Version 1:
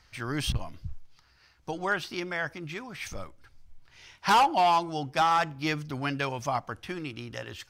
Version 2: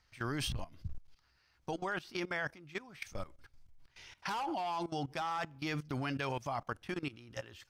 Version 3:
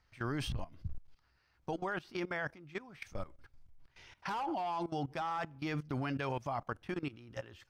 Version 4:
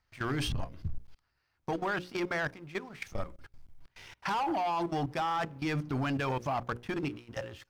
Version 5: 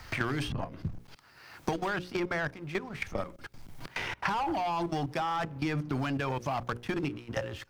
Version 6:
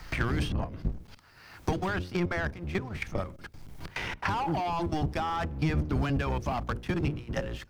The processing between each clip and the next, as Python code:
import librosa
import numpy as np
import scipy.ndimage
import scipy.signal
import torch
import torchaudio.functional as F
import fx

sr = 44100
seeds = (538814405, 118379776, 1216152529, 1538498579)

y1 = fx.level_steps(x, sr, step_db=18)
y2 = fx.high_shelf(y1, sr, hz=2700.0, db=-9.0)
y2 = y2 * 10.0 ** (1.0 / 20.0)
y3 = fx.hum_notches(y2, sr, base_hz=60, count=9)
y3 = fx.leveller(y3, sr, passes=2)
y4 = fx.band_squash(y3, sr, depth_pct=100)
y5 = fx.octave_divider(y4, sr, octaves=1, level_db=4.0)